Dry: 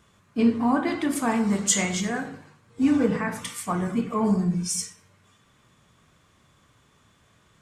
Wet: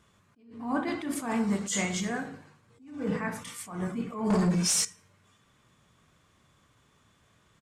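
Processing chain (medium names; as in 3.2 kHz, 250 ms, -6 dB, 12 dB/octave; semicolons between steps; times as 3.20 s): 4.30–4.85 s: overdrive pedal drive 24 dB, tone 6.4 kHz, clips at -12 dBFS; resampled via 32 kHz; attacks held to a fixed rise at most 100 dB/s; trim -4 dB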